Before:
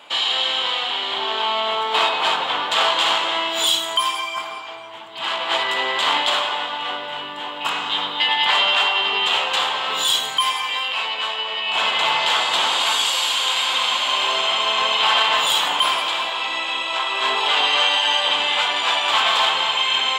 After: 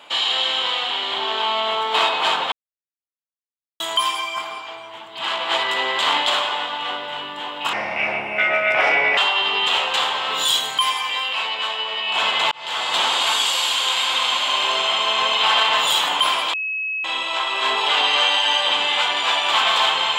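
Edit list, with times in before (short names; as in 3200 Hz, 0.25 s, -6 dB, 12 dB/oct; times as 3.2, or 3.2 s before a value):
2.52–3.8 mute
7.73–8.77 speed 72%
12.11–12.59 fade in
16.13–16.64 bleep 2570 Hz -22 dBFS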